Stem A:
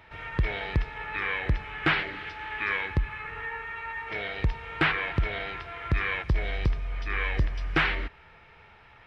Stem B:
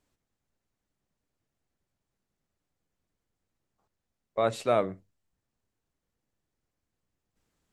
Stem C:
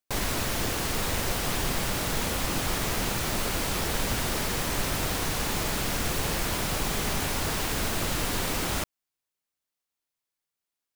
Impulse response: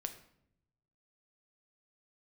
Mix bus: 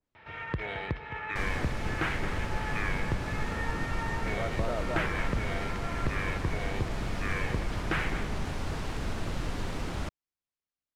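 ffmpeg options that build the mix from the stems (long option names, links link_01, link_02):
-filter_complex "[0:a]highpass=84,adelay=150,volume=0dB,asplit=2[link_01][link_02];[link_02]volume=-16.5dB[link_03];[1:a]volume=-8dB,asplit=2[link_04][link_05];[link_05]volume=-3.5dB[link_06];[2:a]lowshelf=frequency=210:gain=7.5,adelay=1250,volume=-7.5dB[link_07];[link_01][link_04]amix=inputs=2:normalize=0,acompressor=threshold=-31dB:ratio=2,volume=0dB[link_08];[link_03][link_06]amix=inputs=2:normalize=0,aecho=0:1:215:1[link_09];[link_07][link_08][link_09]amix=inputs=3:normalize=0,adynamicsmooth=sensitivity=3.5:basefreq=6300,adynamicequalizer=threshold=0.00631:dfrequency=2300:dqfactor=0.7:tfrequency=2300:tqfactor=0.7:attack=5:release=100:ratio=0.375:range=3:mode=cutabove:tftype=highshelf"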